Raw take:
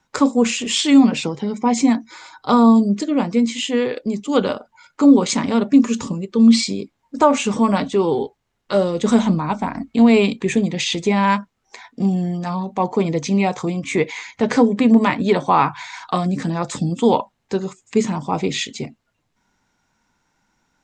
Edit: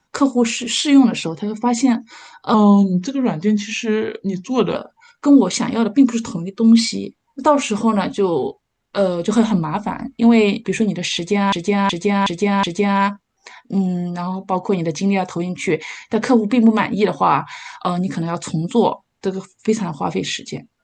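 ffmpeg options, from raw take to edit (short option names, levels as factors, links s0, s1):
-filter_complex "[0:a]asplit=7[s0][s1][s2][s3][s4][s5][s6];[s0]atrim=end=2.544[s7];[s1]atrim=start=2.54:end=4.51,asetpts=PTS-STARTPTS,asetrate=39249,aresample=44100[s8];[s2]atrim=start=4.506:end=11.282[s9];[s3]atrim=start=10.908:end=11.282[s10];[s4]atrim=start=10.908:end=11.282[s11];[s5]atrim=start=10.908:end=11.282[s12];[s6]atrim=start=10.908[s13];[s7][s8]acrossfade=d=0.004:c1=hsin:c2=hsin[s14];[s14][s9]acrossfade=d=0.004:c1=hsin:c2=hsin[s15];[s15][s10]acrossfade=d=0.004:c1=hsin:c2=hsin[s16];[s16][s11]acrossfade=d=0.004:c1=hsin:c2=hsin[s17];[s17][s12]acrossfade=d=0.004:c1=hsin:c2=hsin[s18];[s18][s13]acrossfade=d=0.004:c1=hsin:c2=hsin"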